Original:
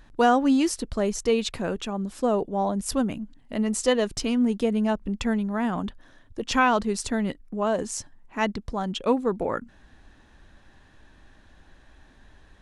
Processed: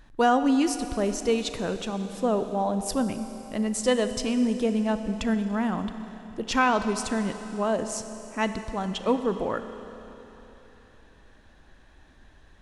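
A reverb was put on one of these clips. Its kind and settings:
four-comb reverb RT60 3.6 s, combs from 28 ms, DRR 9 dB
level −1.5 dB

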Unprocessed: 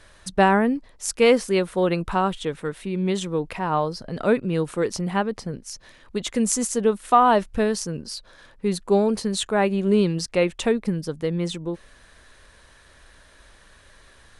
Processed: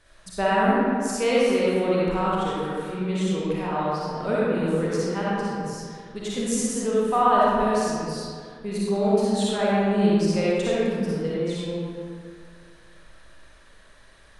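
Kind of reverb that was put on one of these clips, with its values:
comb and all-pass reverb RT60 2.1 s, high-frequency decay 0.6×, pre-delay 15 ms, DRR −8 dB
level −9.5 dB

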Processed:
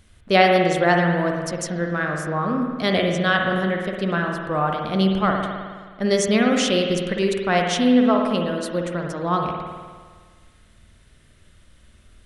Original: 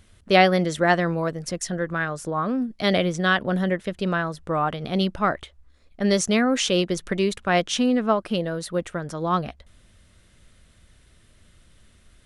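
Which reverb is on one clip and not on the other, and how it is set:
spring reverb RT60 1.6 s, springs 52 ms, chirp 65 ms, DRR 1.5 dB

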